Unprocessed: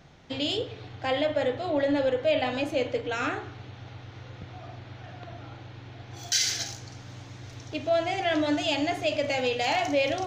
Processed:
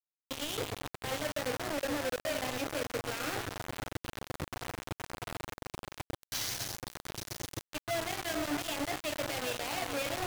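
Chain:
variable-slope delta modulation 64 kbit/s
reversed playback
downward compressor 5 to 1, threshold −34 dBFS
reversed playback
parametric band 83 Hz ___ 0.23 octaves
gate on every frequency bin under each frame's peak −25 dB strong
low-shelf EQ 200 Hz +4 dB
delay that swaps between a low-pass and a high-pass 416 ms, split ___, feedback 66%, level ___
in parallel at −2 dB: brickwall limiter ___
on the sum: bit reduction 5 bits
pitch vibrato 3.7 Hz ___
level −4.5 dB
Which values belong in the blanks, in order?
−2.5 dB, 1,400 Hz, −9 dB, −33.5 dBFS, 28 cents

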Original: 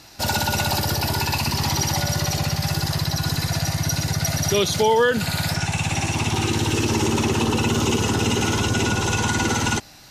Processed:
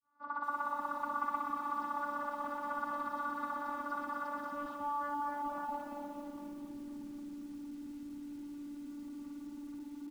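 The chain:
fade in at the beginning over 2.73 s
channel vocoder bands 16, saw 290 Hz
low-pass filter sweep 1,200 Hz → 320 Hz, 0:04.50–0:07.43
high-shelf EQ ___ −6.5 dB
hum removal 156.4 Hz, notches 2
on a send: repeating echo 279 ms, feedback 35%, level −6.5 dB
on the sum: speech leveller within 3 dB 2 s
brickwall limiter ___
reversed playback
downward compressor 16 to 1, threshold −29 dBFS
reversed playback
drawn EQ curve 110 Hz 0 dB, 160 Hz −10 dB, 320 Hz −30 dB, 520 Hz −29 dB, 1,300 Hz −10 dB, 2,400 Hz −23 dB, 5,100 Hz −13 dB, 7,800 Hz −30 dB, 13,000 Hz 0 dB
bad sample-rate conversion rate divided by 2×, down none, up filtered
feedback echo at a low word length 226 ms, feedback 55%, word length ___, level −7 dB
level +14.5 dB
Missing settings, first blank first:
4,200 Hz, −12.5 dBFS, 12 bits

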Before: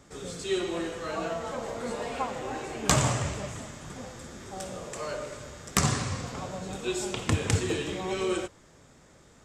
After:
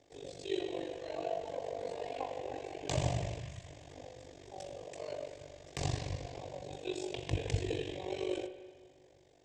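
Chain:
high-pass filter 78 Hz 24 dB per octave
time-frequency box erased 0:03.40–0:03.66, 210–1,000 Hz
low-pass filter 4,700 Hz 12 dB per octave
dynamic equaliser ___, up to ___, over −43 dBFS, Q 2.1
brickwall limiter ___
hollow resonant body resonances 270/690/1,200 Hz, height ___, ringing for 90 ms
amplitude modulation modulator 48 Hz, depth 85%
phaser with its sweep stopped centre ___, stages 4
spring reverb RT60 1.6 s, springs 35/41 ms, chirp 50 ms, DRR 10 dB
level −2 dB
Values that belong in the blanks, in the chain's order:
120 Hz, +5 dB, −12.5 dBFS, 8 dB, 530 Hz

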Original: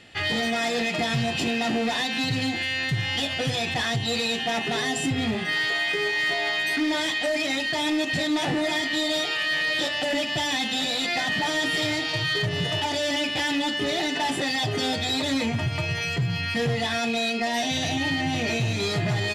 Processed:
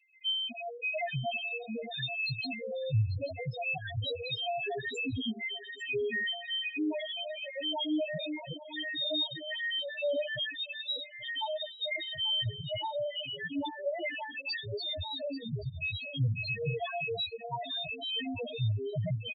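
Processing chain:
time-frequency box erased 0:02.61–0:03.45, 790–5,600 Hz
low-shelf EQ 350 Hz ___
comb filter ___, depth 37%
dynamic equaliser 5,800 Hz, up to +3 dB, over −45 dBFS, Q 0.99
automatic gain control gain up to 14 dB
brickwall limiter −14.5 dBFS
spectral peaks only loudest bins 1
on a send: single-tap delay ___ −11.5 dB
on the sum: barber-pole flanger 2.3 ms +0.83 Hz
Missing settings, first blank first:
−4.5 dB, 1.9 ms, 838 ms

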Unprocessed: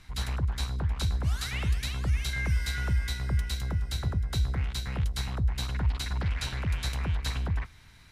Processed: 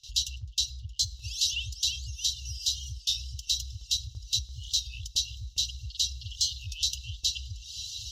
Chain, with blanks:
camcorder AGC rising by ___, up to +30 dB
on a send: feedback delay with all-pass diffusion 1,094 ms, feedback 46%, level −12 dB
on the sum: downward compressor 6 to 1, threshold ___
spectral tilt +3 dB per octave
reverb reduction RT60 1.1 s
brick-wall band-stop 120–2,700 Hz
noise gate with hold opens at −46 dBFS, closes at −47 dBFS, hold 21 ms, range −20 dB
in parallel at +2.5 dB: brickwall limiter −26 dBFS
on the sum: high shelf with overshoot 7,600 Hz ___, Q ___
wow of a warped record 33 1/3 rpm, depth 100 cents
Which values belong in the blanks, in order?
8.5 dB per second, −30 dBFS, −9 dB, 3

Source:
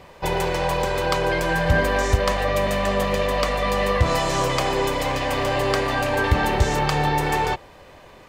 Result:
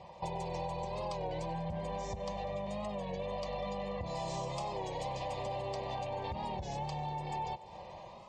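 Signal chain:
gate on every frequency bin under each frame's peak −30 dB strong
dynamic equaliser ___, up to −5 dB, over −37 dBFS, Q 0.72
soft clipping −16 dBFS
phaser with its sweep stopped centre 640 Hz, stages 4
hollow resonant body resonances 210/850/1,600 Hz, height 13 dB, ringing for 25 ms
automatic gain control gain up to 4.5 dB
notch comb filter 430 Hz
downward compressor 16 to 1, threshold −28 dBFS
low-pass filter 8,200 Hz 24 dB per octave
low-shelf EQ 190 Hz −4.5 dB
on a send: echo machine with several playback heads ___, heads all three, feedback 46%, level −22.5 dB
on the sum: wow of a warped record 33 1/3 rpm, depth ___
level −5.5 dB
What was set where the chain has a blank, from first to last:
1,200 Hz, 97 ms, 100 cents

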